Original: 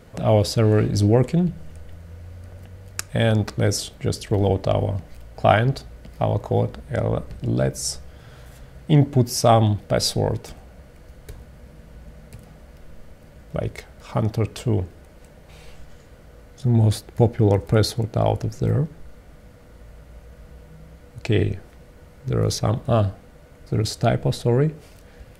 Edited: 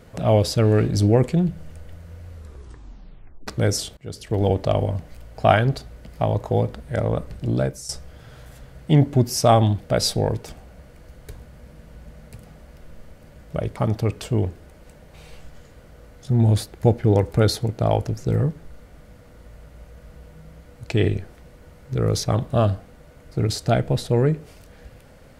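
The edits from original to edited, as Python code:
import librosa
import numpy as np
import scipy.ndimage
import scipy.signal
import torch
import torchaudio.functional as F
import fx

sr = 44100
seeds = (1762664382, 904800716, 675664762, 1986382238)

y = fx.edit(x, sr, fx.tape_stop(start_s=2.29, length_s=1.18),
    fx.fade_in_from(start_s=3.97, length_s=0.49, floor_db=-23.5),
    fx.fade_out_to(start_s=7.58, length_s=0.31, floor_db=-14.0),
    fx.cut(start_s=13.76, length_s=0.35), tone=tone)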